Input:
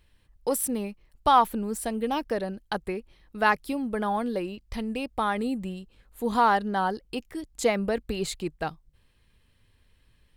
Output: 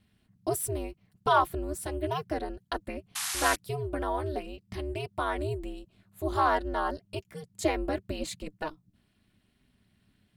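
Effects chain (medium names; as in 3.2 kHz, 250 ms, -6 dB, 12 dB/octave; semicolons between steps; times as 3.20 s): comb of notches 350 Hz; painted sound noise, 3.15–3.56 s, 850–12000 Hz -30 dBFS; ring modulator 150 Hz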